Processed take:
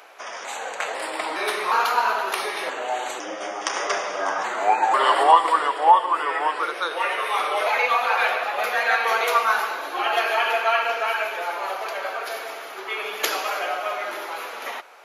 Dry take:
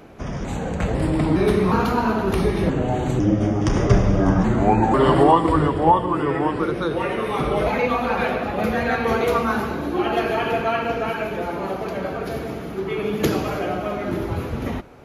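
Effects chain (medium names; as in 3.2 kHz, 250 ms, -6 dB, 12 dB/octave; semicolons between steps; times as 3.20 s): Bessel high-pass 960 Hz, order 4; trim +6 dB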